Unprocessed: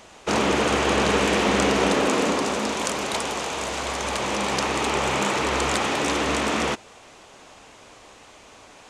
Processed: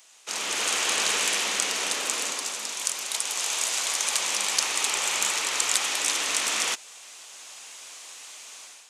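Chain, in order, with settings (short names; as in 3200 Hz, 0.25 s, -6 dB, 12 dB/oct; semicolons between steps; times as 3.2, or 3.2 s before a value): AGC gain up to 12 dB; differentiator; gain +1 dB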